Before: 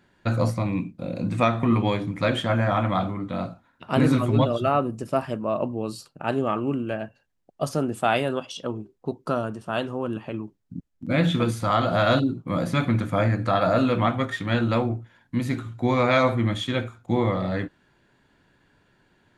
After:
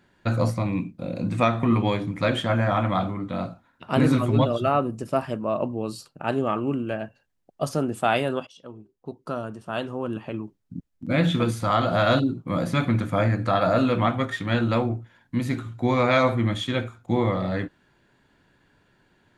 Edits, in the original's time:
0:08.47–0:10.25: fade in, from −16 dB

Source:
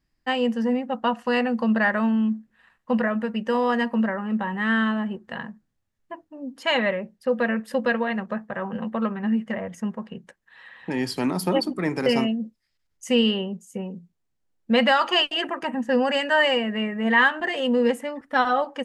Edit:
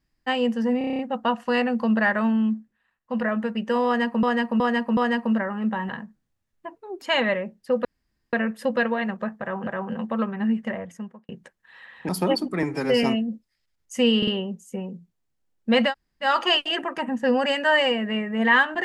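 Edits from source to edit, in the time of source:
0:00.78: stutter 0.03 s, 8 plays
0:02.29–0:03.10: duck −13.5 dB, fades 0.31 s
0:03.65–0:04.02: repeat, 4 plays
0:04.57–0:05.35: remove
0:06.22–0:06.59: play speed 143%
0:07.42: splice in room tone 0.48 s
0:08.50–0:08.76: repeat, 2 plays
0:09.52–0:10.12: fade out
0:10.92–0:11.34: remove
0:11.88–0:12.15: time-stretch 1.5×
0:13.29: stutter 0.05 s, 3 plays
0:14.91: splice in room tone 0.36 s, crossfade 0.10 s

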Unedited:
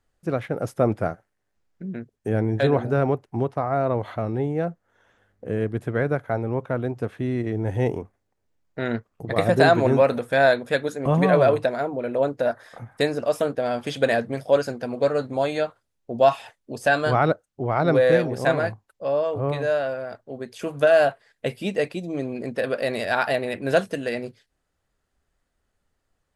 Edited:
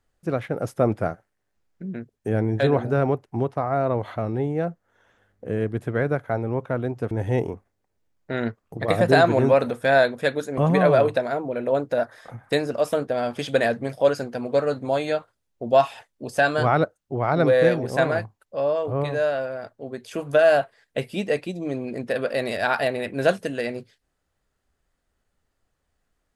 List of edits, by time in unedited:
0:07.11–0:07.59: remove

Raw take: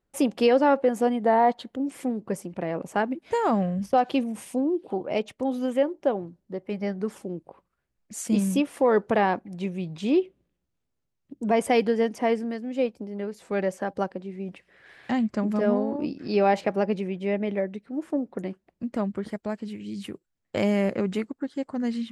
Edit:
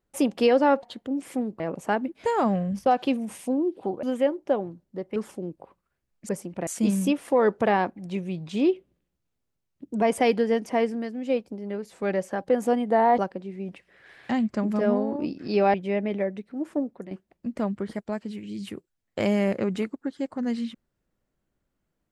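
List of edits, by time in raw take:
0:00.83–0:01.52: move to 0:13.98
0:02.29–0:02.67: move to 0:08.16
0:05.10–0:05.59: remove
0:06.72–0:07.03: remove
0:16.54–0:17.11: remove
0:18.16–0:18.48: fade out, to −11 dB

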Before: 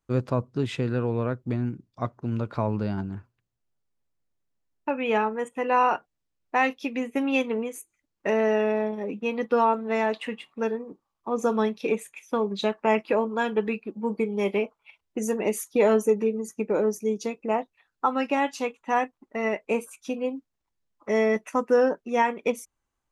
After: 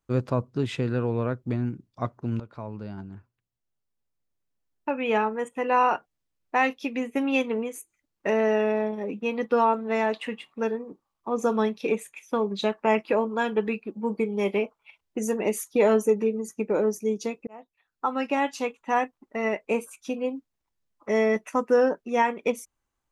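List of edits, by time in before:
0:02.40–0:05.10: fade in linear, from −13 dB
0:17.47–0:18.65: fade in equal-power

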